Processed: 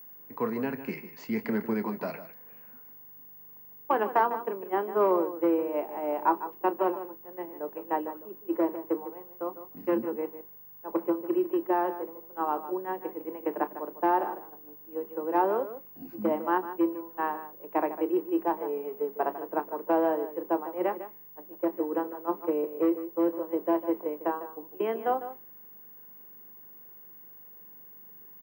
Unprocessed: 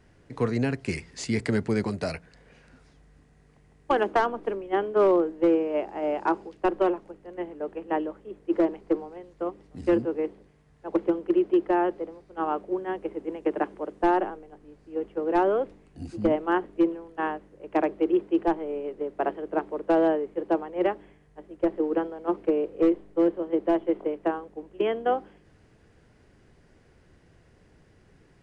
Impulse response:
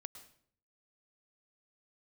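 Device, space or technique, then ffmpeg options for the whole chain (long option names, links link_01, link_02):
old television with a line whistle: -filter_complex "[0:a]asettb=1/sr,asplit=3[link_01][link_02][link_03];[link_01]atrim=end=18.534[link_04];[link_02]atrim=start=18.53:end=19.22,asetpts=PTS-STARTPTS,afade=type=in:duration=0.004:curve=qsin,afade=type=out:start_time=0.686:duration=0.004:curve=qsin,aecho=1:1:4.5:0.65,atrim=end_sample=30429[link_05];[link_03]atrim=start=19.216[link_06];[link_04][link_05]acrossfade=duration=0.004:curve1=hsin:curve2=qsin[link_07];[link_07][link_06]acrossfade=duration=0.004:curve1=qsin:curve2=hsin,highpass=frequency=160:width=0.5412,highpass=frequency=160:width=1.3066,equalizer=frequency=210:width_type=q:width=4:gain=4,equalizer=frequency=980:width_type=q:width=4:gain=9,equalizer=frequency=3600:width_type=q:width=4:gain=-8,lowpass=frequency=6600:width=0.5412,lowpass=frequency=6600:width=1.3066,asplit=2[link_08][link_09];[link_09]adelay=27,volume=-13dB[link_10];[link_08][link_10]amix=inputs=2:normalize=0,aeval=exprs='val(0)+0.0398*sin(2*PI*15625*n/s)':channel_layout=same,bass=frequency=250:gain=-3,treble=frequency=4000:gain=-13,asplit=2[link_11][link_12];[link_12]adelay=151.6,volume=-12dB,highshelf=frequency=4000:gain=-3.41[link_13];[link_11][link_13]amix=inputs=2:normalize=0,volume=-4.5dB"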